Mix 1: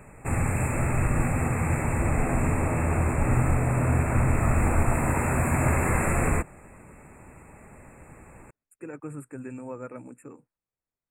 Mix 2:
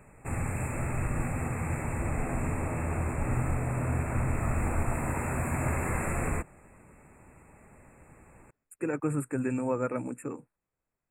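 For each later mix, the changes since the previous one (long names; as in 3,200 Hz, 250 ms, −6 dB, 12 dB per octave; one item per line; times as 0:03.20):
speech +8.0 dB
background −6.5 dB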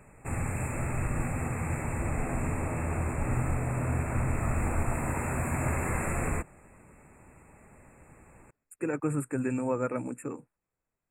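master: add parametric band 5,200 Hz +6 dB 0.65 octaves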